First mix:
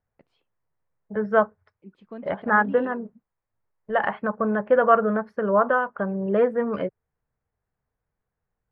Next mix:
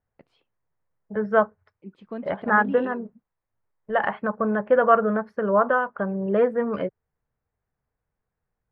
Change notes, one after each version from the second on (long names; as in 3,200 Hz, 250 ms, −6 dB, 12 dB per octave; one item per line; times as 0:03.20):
first voice +4.5 dB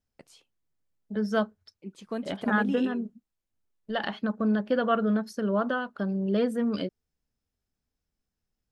second voice: add octave-band graphic EQ 125/250/500/1,000/2,000/4,000 Hz −9/+6/−8/−11/−10/+9 dB
master: remove high-frequency loss of the air 420 metres